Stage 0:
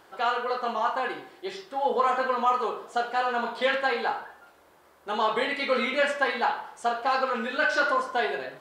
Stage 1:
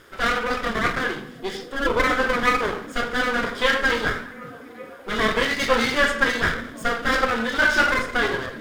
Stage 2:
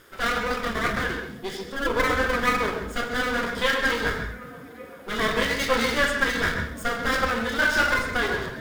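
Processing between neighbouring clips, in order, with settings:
minimum comb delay 0.58 ms; delay with a stepping band-pass 0.387 s, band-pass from 170 Hz, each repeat 0.7 oct, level -9 dB; gain +7 dB
high shelf 9400 Hz +9.5 dB; on a send at -7.5 dB: reverb RT60 0.10 s, pre-delay 0.129 s; on the sum: gain -3.5 dB

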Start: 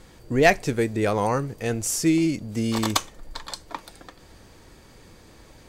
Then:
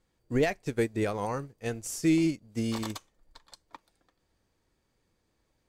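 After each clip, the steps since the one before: limiter -15.5 dBFS, peak gain reduction 11 dB; upward expander 2.5:1, over -37 dBFS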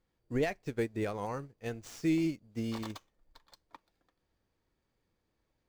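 median filter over 5 samples; gain -5 dB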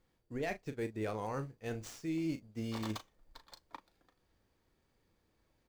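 reverse; compressor 8:1, threshold -39 dBFS, peak gain reduction 14 dB; reverse; doubler 37 ms -11 dB; gain +4 dB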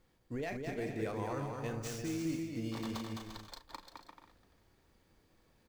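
limiter -36 dBFS, peak gain reduction 9.5 dB; on a send: bouncing-ball echo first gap 0.21 s, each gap 0.65×, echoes 5; on the sum: gain +4.5 dB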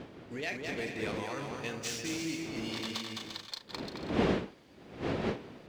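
wind noise 360 Hz -36 dBFS; weighting filter D

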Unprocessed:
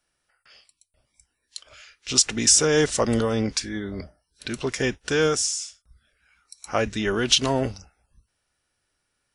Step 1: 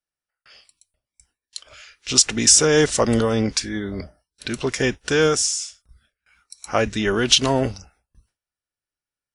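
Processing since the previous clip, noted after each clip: gate with hold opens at -53 dBFS; gain +3.5 dB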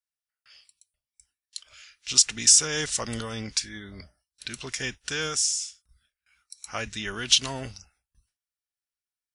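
passive tone stack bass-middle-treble 5-5-5; gain +3 dB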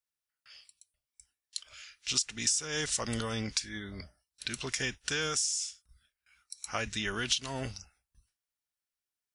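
compressor 5:1, threshold -28 dBFS, peak gain reduction 14 dB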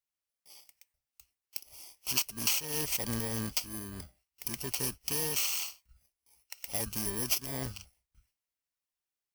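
FFT order left unsorted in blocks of 32 samples

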